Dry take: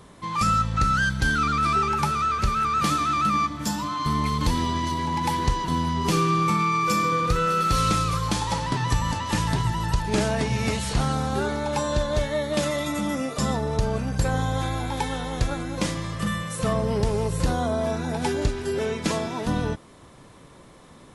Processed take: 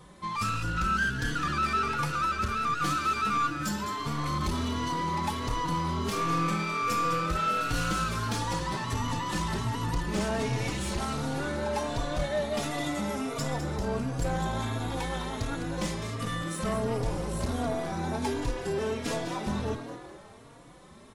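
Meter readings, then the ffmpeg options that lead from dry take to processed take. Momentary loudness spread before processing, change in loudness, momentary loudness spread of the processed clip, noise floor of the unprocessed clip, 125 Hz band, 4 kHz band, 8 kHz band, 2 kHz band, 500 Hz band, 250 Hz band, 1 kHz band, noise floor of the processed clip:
6 LU, -5.5 dB, 5 LU, -49 dBFS, -6.5 dB, -5.0 dB, -5.5 dB, -4.0 dB, -5.5 dB, -5.5 dB, -5.5 dB, -50 dBFS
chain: -filter_complex "[0:a]aeval=exprs='(tanh(12.6*val(0)+0.3)-tanh(0.3))/12.6':c=same,asplit=6[s0][s1][s2][s3][s4][s5];[s1]adelay=207,afreqshift=120,volume=0.335[s6];[s2]adelay=414,afreqshift=240,volume=0.155[s7];[s3]adelay=621,afreqshift=360,volume=0.0708[s8];[s4]adelay=828,afreqshift=480,volume=0.0327[s9];[s5]adelay=1035,afreqshift=600,volume=0.015[s10];[s0][s6][s7][s8][s9][s10]amix=inputs=6:normalize=0,asplit=2[s11][s12];[s12]adelay=3.6,afreqshift=1.4[s13];[s11][s13]amix=inputs=2:normalize=1"

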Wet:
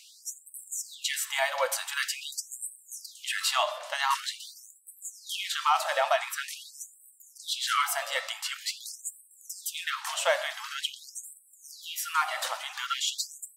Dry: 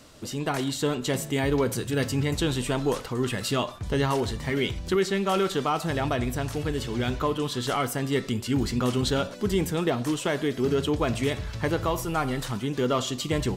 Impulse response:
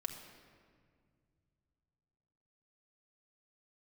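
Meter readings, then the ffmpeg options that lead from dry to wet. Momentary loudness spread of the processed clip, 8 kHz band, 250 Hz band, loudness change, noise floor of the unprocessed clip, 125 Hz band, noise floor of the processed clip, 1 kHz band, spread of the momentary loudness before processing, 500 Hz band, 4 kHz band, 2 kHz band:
16 LU, +3.0 dB, under -40 dB, -3.5 dB, -38 dBFS, under -40 dB, -58 dBFS, 0.0 dB, 4 LU, -9.5 dB, +1.5 dB, +1.0 dB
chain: -filter_complex "[0:a]acontrast=70,asplit=2[s0][s1];[1:a]atrim=start_sample=2205,highshelf=f=4700:g=-2.5[s2];[s1][s2]afir=irnorm=-1:irlink=0,volume=0.75[s3];[s0][s3]amix=inputs=2:normalize=0,afftfilt=real='re*gte(b*sr/1024,510*pow(7800/510,0.5+0.5*sin(2*PI*0.46*pts/sr)))':imag='im*gte(b*sr/1024,510*pow(7800/510,0.5+0.5*sin(2*PI*0.46*pts/sr)))':win_size=1024:overlap=0.75,volume=0.473"

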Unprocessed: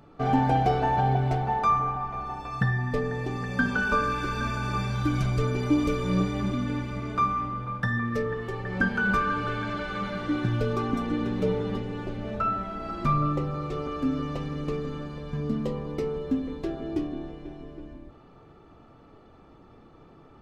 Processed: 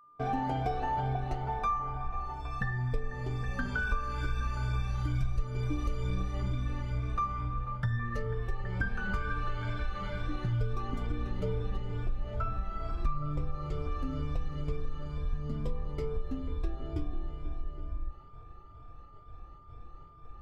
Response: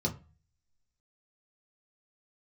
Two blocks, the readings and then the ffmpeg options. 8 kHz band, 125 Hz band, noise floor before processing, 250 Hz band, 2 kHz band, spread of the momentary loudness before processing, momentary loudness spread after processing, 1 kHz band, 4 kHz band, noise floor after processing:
no reading, -4.5 dB, -53 dBFS, -12.0 dB, -9.0 dB, 10 LU, 14 LU, -8.5 dB, -8.5 dB, -51 dBFS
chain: -af "afftfilt=real='re*pow(10,9/40*sin(2*PI*(1.7*log(max(b,1)*sr/1024/100)/log(2)-(2.2)*(pts-256)/sr)))':imag='im*pow(10,9/40*sin(2*PI*(1.7*log(max(b,1)*sr/1024/100)/log(2)-(2.2)*(pts-256)/sr)))':win_size=1024:overlap=0.75,asubboost=boost=12:cutoff=66,agate=range=0.0224:threshold=0.01:ratio=3:detection=peak,acompressor=threshold=0.0794:ratio=3,aeval=exprs='val(0)+0.00355*sin(2*PI*1200*n/s)':c=same,volume=0.473"

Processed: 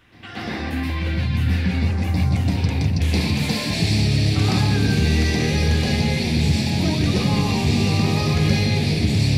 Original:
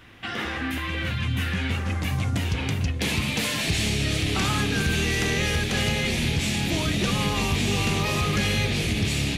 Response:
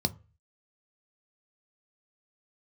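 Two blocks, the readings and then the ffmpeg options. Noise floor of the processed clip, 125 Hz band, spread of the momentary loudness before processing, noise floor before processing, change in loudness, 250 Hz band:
-28 dBFS, +7.5 dB, 4 LU, -30 dBFS, +4.5 dB, +6.5 dB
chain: -filter_complex "[0:a]asplit=2[s0][s1];[s1]lowshelf=f=150:g=-6[s2];[1:a]atrim=start_sample=2205,adelay=122[s3];[s2][s3]afir=irnorm=-1:irlink=0,volume=0.944[s4];[s0][s4]amix=inputs=2:normalize=0,volume=0.501"

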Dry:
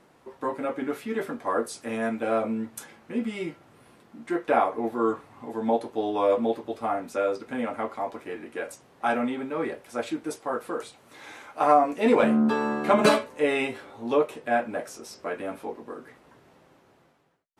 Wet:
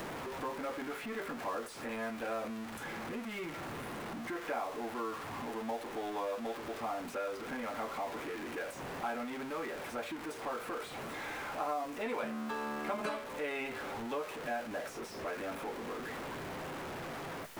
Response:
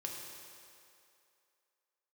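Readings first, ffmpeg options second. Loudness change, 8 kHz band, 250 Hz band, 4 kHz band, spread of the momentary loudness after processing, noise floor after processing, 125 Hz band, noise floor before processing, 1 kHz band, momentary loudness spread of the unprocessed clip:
-12.5 dB, -7.0 dB, -13.0 dB, -7.0 dB, 5 LU, -45 dBFS, -8.0 dB, -59 dBFS, -11.0 dB, 16 LU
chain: -filter_complex "[0:a]aeval=exprs='val(0)+0.5*0.0422*sgn(val(0))':c=same,bandreject=f=60:t=h:w=6,bandreject=f=120:t=h:w=6,acrossover=split=730|2700[s0][s1][s2];[s0]acompressor=threshold=0.02:ratio=4[s3];[s1]acompressor=threshold=0.0282:ratio=4[s4];[s2]acompressor=threshold=0.00447:ratio=4[s5];[s3][s4][s5]amix=inputs=3:normalize=0,volume=0.422"

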